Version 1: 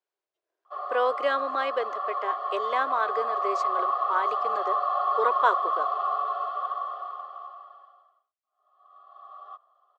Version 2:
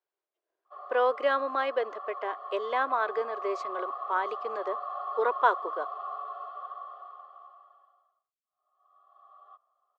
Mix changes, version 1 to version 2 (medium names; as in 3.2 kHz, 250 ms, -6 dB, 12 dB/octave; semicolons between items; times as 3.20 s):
background -9.5 dB; master: add treble shelf 5.3 kHz -11.5 dB